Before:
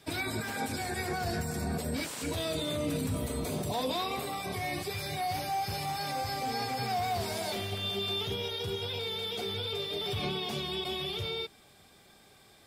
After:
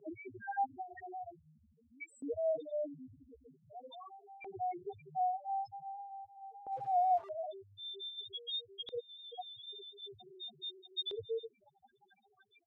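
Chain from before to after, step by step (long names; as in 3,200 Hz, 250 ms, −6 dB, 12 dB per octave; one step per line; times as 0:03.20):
0:08.98–0:09.78: parametric band 5,200 Hz +7 dB 2.8 octaves
downward compressor 3 to 1, threshold −41 dBFS, peak gain reduction 10 dB
square-wave tremolo 1.1 Hz, depth 65%, duty 90%
spectral peaks only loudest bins 1
0:06.72–0:07.29: bit-depth reduction 10 bits, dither none
auto-filter band-pass saw up 0.45 Hz 450–4,100 Hz
level +18 dB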